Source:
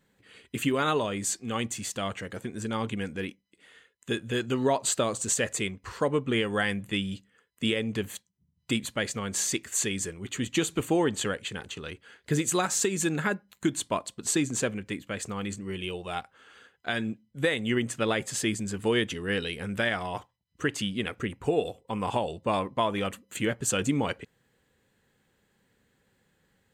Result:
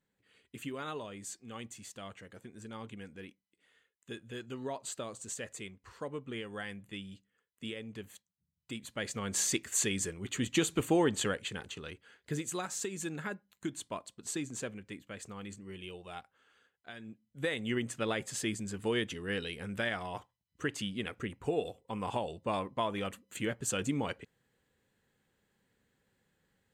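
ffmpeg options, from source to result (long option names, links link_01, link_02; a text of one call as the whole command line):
ffmpeg -i in.wav -af "volume=9.5dB,afade=type=in:start_time=8.79:duration=0.58:silence=0.266073,afade=type=out:start_time=11.24:duration=1.24:silence=0.375837,afade=type=out:start_time=16.07:duration=0.92:silence=0.421697,afade=type=in:start_time=16.99:duration=0.59:silence=0.251189" out.wav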